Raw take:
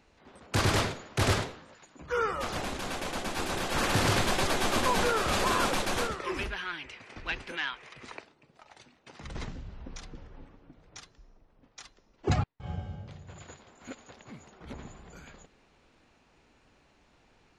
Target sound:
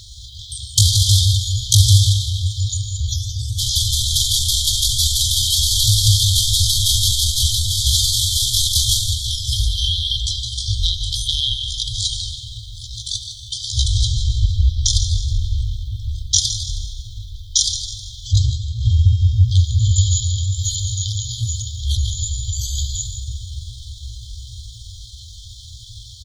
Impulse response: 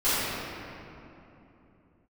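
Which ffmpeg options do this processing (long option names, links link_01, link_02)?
-filter_complex "[0:a]acompressor=threshold=-40dB:ratio=8,aecho=1:1:105|210|315|420:0.266|0.0958|0.0345|0.0124,asplit=2[link_01][link_02];[1:a]atrim=start_sample=2205,asetrate=33075,aresample=44100[link_03];[link_02][link_03]afir=irnorm=-1:irlink=0,volume=-22dB[link_04];[link_01][link_04]amix=inputs=2:normalize=0,acontrast=39,highpass=frequency=72:poles=1,atempo=0.67,afftfilt=real='re*(1-between(b*sr/4096,120,3100))':imag='im*(1-between(b*sr/4096,120,3100))':win_size=4096:overlap=0.75,apsyclip=28.5dB,volume=-1.5dB"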